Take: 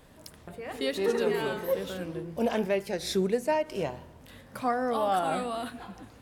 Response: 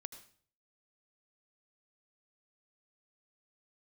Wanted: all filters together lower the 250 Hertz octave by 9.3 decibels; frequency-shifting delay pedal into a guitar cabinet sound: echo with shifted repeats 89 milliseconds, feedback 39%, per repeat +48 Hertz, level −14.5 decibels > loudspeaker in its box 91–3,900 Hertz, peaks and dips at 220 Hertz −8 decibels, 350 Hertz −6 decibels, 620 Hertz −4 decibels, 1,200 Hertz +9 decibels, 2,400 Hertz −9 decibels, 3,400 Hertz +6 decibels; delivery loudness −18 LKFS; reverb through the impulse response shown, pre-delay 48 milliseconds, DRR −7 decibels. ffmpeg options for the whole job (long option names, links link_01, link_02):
-filter_complex "[0:a]equalizer=frequency=250:width_type=o:gain=-6,asplit=2[link_01][link_02];[1:a]atrim=start_sample=2205,adelay=48[link_03];[link_02][link_03]afir=irnorm=-1:irlink=0,volume=11dB[link_04];[link_01][link_04]amix=inputs=2:normalize=0,asplit=5[link_05][link_06][link_07][link_08][link_09];[link_06]adelay=89,afreqshift=48,volume=-14.5dB[link_10];[link_07]adelay=178,afreqshift=96,volume=-22.7dB[link_11];[link_08]adelay=267,afreqshift=144,volume=-30.9dB[link_12];[link_09]adelay=356,afreqshift=192,volume=-39dB[link_13];[link_05][link_10][link_11][link_12][link_13]amix=inputs=5:normalize=0,highpass=91,equalizer=frequency=220:width_type=q:width=4:gain=-8,equalizer=frequency=350:width_type=q:width=4:gain=-6,equalizer=frequency=620:width_type=q:width=4:gain=-4,equalizer=frequency=1200:width_type=q:width=4:gain=9,equalizer=frequency=2400:width_type=q:width=4:gain=-9,equalizer=frequency=3400:width_type=q:width=4:gain=6,lowpass=frequency=3900:width=0.5412,lowpass=frequency=3900:width=1.3066,volume=6dB"